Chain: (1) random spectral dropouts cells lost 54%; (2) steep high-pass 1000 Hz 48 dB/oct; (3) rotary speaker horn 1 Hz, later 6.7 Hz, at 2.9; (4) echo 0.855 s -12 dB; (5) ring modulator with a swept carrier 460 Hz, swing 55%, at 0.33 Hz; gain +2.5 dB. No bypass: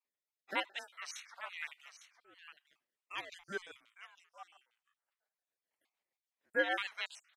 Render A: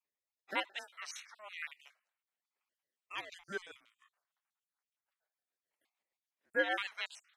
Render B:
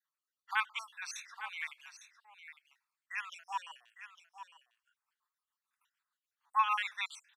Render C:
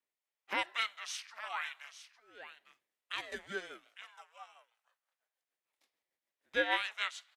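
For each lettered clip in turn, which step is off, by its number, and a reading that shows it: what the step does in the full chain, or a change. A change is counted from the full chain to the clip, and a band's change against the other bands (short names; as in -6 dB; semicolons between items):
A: 4, momentary loudness spread change -8 LU; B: 5, crest factor change -2.5 dB; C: 1, 4 kHz band +3.0 dB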